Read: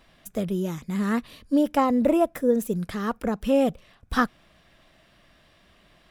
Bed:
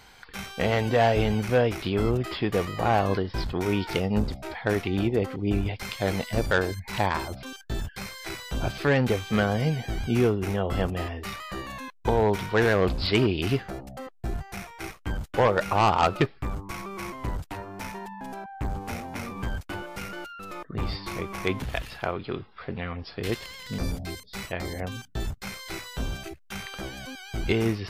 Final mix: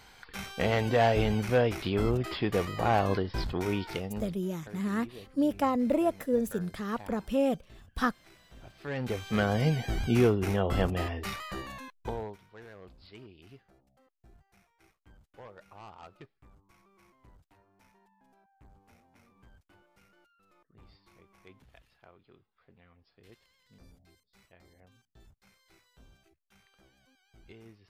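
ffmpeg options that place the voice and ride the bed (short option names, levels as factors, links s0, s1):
-filter_complex "[0:a]adelay=3850,volume=0.501[s0];[1:a]volume=8.91,afade=t=out:st=3.52:d=0.88:silence=0.1,afade=t=in:st=8.77:d=0.9:silence=0.0794328,afade=t=out:st=11.29:d=1.09:silence=0.0446684[s1];[s0][s1]amix=inputs=2:normalize=0"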